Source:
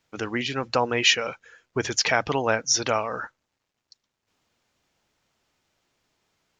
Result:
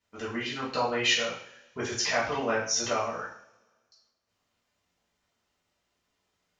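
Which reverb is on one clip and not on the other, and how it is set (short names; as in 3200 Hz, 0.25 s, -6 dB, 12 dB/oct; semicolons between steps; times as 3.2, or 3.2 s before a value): two-slope reverb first 0.53 s, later 1.7 s, from -24 dB, DRR -8.5 dB; gain -13.5 dB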